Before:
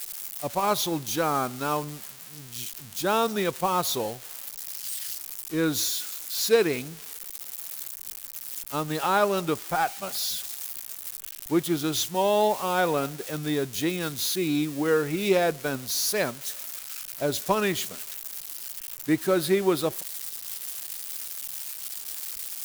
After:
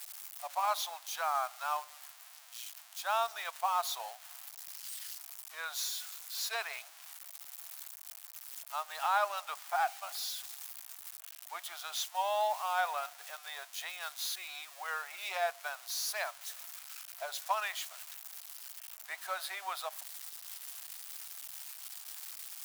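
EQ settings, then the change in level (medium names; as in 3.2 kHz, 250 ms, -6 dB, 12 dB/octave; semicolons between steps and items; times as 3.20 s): Chebyshev high-pass 670 Hz, order 5; treble shelf 4.1 kHz -6.5 dB; -4.5 dB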